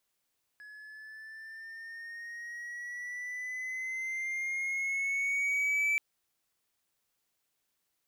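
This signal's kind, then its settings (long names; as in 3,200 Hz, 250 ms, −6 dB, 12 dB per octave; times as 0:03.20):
pitch glide with a swell triangle, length 5.38 s, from 1,690 Hz, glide +5.5 semitones, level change +21.5 dB, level −23.5 dB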